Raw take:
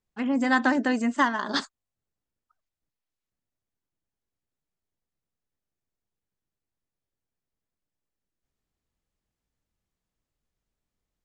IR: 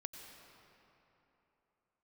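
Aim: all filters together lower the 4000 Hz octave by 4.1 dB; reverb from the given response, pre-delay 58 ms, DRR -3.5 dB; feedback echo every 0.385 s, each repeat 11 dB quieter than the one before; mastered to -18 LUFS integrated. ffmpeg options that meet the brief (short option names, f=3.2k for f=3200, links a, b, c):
-filter_complex "[0:a]equalizer=f=4k:t=o:g=-5,aecho=1:1:385|770|1155:0.282|0.0789|0.0221,asplit=2[a][b];[1:a]atrim=start_sample=2205,adelay=58[c];[b][c]afir=irnorm=-1:irlink=0,volume=6.5dB[d];[a][d]amix=inputs=2:normalize=0,volume=2dB"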